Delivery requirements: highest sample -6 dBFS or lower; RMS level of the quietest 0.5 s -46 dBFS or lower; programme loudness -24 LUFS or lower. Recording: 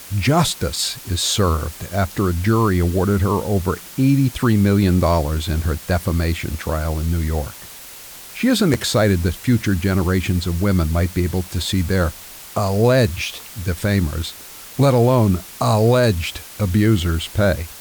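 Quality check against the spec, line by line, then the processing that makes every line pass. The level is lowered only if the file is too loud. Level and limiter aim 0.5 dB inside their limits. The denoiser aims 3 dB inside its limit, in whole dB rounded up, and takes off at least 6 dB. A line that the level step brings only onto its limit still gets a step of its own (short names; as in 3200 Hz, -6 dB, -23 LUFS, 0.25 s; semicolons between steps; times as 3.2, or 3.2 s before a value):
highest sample -5.0 dBFS: fail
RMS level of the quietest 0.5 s -38 dBFS: fail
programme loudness -19.0 LUFS: fail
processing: denoiser 6 dB, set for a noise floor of -38 dBFS; gain -5.5 dB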